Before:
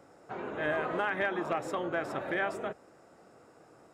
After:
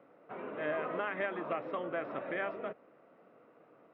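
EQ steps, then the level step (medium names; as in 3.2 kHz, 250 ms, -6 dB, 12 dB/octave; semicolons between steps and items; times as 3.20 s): distance through air 160 m; cabinet simulation 220–3000 Hz, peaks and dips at 360 Hz -6 dB, 820 Hz -8 dB, 1.6 kHz -6 dB; 0.0 dB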